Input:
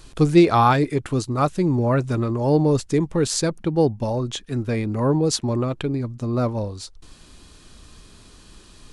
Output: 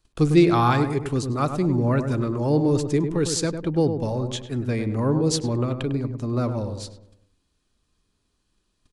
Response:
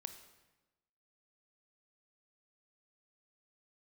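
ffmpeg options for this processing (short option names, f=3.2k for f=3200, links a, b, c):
-filter_complex "[0:a]agate=range=-23dB:threshold=-39dB:ratio=16:detection=peak,asplit=2[a][b];[b]adelay=101,lowpass=f=1.3k:p=1,volume=-7dB,asplit=2[c][d];[d]adelay=101,lowpass=f=1.3k:p=1,volume=0.47,asplit=2[e][f];[f]adelay=101,lowpass=f=1.3k:p=1,volume=0.47,asplit=2[g][h];[h]adelay=101,lowpass=f=1.3k:p=1,volume=0.47,asplit=2[i][j];[j]adelay=101,lowpass=f=1.3k:p=1,volume=0.47,asplit=2[k][l];[l]adelay=101,lowpass=f=1.3k:p=1,volume=0.47[m];[a][c][e][g][i][k][m]amix=inputs=7:normalize=0,acrossover=split=610|880[n][o][p];[o]acompressor=threshold=-41dB:ratio=6[q];[n][q][p]amix=inputs=3:normalize=0,volume=-2dB"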